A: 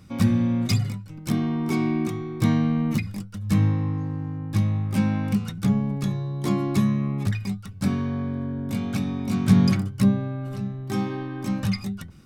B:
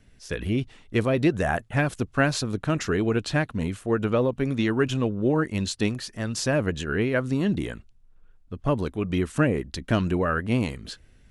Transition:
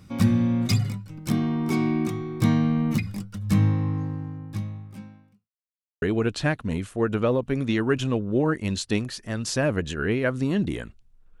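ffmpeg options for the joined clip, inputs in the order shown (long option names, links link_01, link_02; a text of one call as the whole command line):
ffmpeg -i cue0.wav -i cue1.wav -filter_complex "[0:a]apad=whole_dur=11.4,atrim=end=11.4,asplit=2[link_01][link_02];[link_01]atrim=end=5.5,asetpts=PTS-STARTPTS,afade=type=out:start_time=4.02:duration=1.48:curve=qua[link_03];[link_02]atrim=start=5.5:end=6.02,asetpts=PTS-STARTPTS,volume=0[link_04];[1:a]atrim=start=2.92:end=8.3,asetpts=PTS-STARTPTS,afade=type=in:duration=0.004:curve=hsin[link_05];[link_03][link_04][link_05]concat=n=3:v=0:a=1" out.wav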